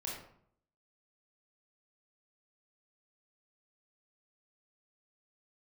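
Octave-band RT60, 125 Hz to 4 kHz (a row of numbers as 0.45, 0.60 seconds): 0.75, 0.75, 0.65, 0.60, 0.50, 0.40 seconds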